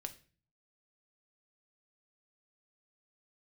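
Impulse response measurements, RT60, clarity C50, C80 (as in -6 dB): 0.40 s, 15.5 dB, 20.0 dB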